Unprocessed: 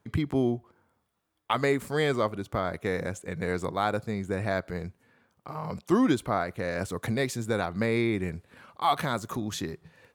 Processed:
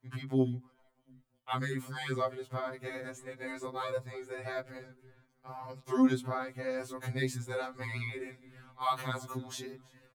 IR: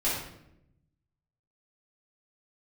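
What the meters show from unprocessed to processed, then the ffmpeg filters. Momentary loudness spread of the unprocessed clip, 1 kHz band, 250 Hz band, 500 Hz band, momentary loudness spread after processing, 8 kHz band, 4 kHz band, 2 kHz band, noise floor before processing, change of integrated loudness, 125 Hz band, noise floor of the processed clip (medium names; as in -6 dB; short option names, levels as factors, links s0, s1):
11 LU, -7.0 dB, -6.0 dB, -8.0 dB, 16 LU, -6.5 dB, -7.0 dB, -7.0 dB, -75 dBFS, -6.5 dB, -5.5 dB, -72 dBFS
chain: -filter_complex "[0:a]bandreject=f=50:t=h:w=6,bandreject=f=100:t=h:w=6,bandreject=f=150:t=h:w=6,bandreject=f=200:t=h:w=6,bandreject=f=250:t=h:w=6,asplit=4[s0][s1][s2][s3];[s1]adelay=328,afreqshift=-53,volume=0.0708[s4];[s2]adelay=656,afreqshift=-106,volume=0.0269[s5];[s3]adelay=984,afreqshift=-159,volume=0.0102[s6];[s0][s4][s5][s6]amix=inputs=4:normalize=0,afftfilt=real='re*2.45*eq(mod(b,6),0)':imag='im*2.45*eq(mod(b,6),0)':win_size=2048:overlap=0.75,volume=0.596"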